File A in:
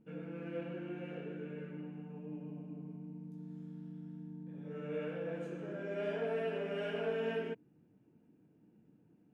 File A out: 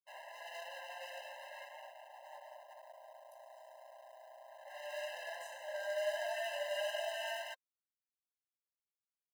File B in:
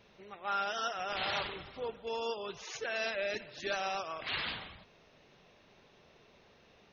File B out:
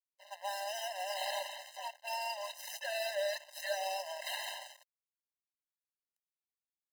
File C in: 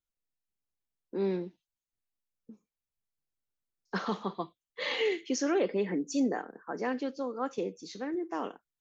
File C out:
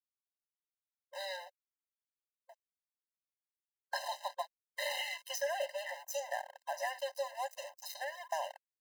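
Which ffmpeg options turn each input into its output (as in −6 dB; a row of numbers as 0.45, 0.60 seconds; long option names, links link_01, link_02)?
-filter_complex "[0:a]acrossover=split=480|1200|4200[link_01][link_02][link_03][link_04];[link_01]acompressor=threshold=-35dB:ratio=4[link_05];[link_02]acompressor=threshold=-48dB:ratio=4[link_06];[link_03]acompressor=threshold=-51dB:ratio=4[link_07];[link_04]acompressor=threshold=-58dB:ratio=4[link_08];[link_05][link_06][link_07][link_08]amix=inputs=4:normalize=0,aeval=exprs='sgn(val(0))*max(abs(val(0))-0.00299,0)':channel_layout=same,aemphasis=mode=production:type=50kf,afftfilt=real='re*eq(mod(floor(b*sr/1024/530),2),1)':imag='im*eq(mod(floor(b*sr/1024/530),2),1)':win_size=1024:overlap=0.75,volume=9.5dB"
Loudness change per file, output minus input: −0.5, −2.0, −6.5 LU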